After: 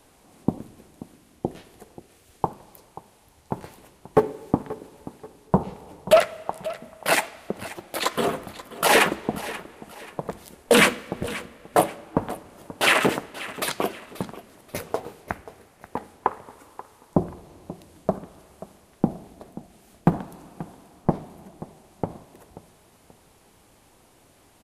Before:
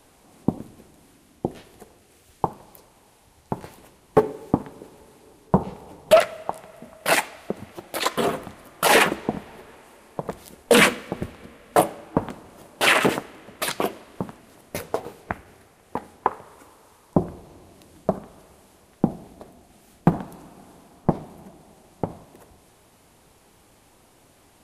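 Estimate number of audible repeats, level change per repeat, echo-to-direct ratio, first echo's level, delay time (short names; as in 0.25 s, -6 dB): 2, -9.0 dB, -16.0 dB, -16.5 dB, 0.533 s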